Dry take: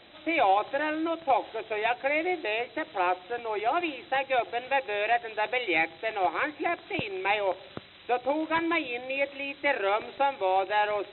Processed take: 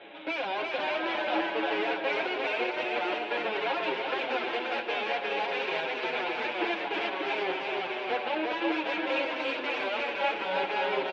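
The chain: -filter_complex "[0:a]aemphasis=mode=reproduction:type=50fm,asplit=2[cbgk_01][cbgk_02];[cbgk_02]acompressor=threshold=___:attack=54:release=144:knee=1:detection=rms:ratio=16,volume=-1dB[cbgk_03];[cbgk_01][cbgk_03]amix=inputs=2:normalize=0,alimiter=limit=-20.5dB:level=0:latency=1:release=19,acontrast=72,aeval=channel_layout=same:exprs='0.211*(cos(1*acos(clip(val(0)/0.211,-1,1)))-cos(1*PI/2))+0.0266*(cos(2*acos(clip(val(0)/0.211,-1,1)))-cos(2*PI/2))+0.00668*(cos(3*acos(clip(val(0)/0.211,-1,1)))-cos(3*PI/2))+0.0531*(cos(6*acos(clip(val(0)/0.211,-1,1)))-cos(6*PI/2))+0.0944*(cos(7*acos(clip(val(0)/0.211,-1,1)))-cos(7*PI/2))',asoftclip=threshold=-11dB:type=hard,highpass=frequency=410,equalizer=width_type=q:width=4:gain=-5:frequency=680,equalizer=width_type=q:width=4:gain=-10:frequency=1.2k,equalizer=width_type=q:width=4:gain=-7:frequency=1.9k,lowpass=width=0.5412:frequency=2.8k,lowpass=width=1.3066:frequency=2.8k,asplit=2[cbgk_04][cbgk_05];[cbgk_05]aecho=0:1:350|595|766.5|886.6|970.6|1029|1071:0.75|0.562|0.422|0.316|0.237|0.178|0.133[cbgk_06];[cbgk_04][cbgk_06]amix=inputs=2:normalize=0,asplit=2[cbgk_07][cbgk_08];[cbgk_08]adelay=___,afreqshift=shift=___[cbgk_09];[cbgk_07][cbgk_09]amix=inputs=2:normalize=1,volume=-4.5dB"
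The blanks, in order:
-35dB, 6.8, -0.57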